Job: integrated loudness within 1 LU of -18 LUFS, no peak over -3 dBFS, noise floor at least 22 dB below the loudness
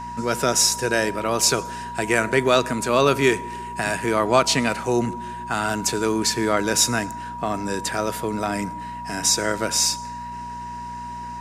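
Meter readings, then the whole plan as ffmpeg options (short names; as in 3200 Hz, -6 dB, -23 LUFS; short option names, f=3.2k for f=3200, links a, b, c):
hum 60 Hz; harmonics up to 240 Hz; hum level -38 dBFS; steady tone 960 Hz; tone level -31 dBFS; loudness -21.5 LUFS; peak -4.5 dBFS; loudness target -18.0 LUFS
-> -af "bandreject=f=60:t=h:w=4,bandreject=f=120:t=h:w=4,bandreject=f=180:t=h:w=4,bandreject=f=240:t=h:w=4"
-af "bandreject=f=960:w=30"
-af "volume=3.5dB,alimiter=limit=-3dB:level=0:latency=1"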